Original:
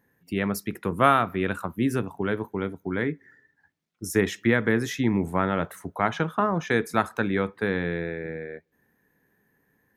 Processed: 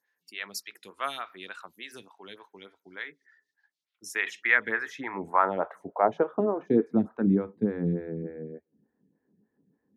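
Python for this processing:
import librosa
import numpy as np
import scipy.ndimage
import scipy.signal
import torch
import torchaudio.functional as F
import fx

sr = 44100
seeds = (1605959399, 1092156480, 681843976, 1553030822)

y = fx.filter_sweep_bandpass(x, sr, from_hz=4600.0, to_hz=210.0, start_s=3.63, end_s=7.15, q=1.7)
y = fx.stagger_phaser(y, sr, hz=3.4)
y = F.gain(torch.from_numpy(y), 7.5).numpy()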